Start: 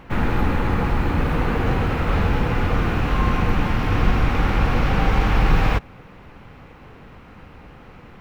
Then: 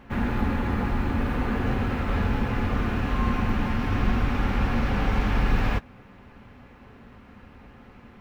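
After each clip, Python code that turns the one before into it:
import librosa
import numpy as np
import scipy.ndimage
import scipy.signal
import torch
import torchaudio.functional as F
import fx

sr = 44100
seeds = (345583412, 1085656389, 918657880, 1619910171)

y = fx.notch_comb(x, sr, f0_hz=160.0)
y = fx.small_body(y, sr, hz=(230.0, 1700.0), ring_ms=45, db=6)
y = y * 10.0 ** (-5.0 / 20.0)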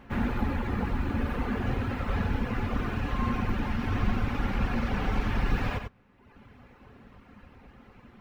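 y = fx.dereverb_blind(x, sr, rt60_s=1.1)
y = y + 10.0 ** (-7.0 / 20.0) * np.pad(y, (int(93 * sr / 1000.0), 0))[:len(y)]
y = y * 10.0 ** (-2.0 / 20.0)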